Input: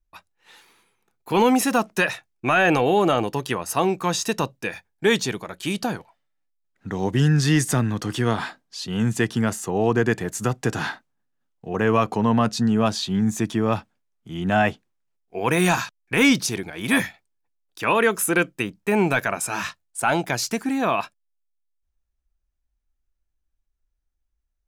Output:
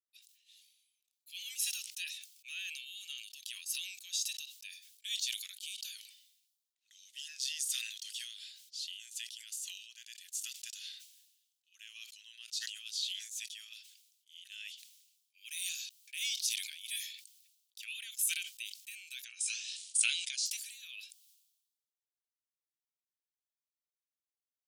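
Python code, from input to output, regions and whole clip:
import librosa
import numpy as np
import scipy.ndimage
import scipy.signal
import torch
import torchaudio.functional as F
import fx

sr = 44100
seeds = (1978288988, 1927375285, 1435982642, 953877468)

y = fx.chain(x, sr, fx.brickwall_lowpass(high_hz=10000.0),
    fx.doubler(ms=16.0, db=-11.0),
    fx.pre_swell(db_per_s=28.0), at=(19.24, 20.46))
y = scipy.signal.sosfilt(scipy.signal.butter(6, 3000.0, 'highpass', fs=sr, output='sos'), y)
y = fx.sustainer(y, sr, db_per_s=59.0)
y = F.gain(torch.from_numpy(y), -8.0).numpy()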